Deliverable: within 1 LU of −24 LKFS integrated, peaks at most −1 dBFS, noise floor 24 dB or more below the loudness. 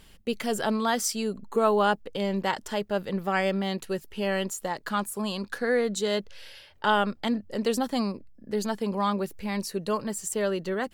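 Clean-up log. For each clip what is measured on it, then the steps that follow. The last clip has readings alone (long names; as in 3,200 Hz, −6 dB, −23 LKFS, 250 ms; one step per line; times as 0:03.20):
integrated loudness −28.0 LKFS; sample peak −11.0 dBFS; target loudness −24.0 LKFS
→ level +4 dB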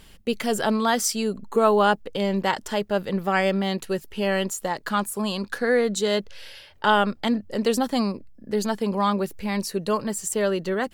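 integrated loudness −24.5 LKFS; sample peak −7.0 dBFS; background noise floor −50 dBFS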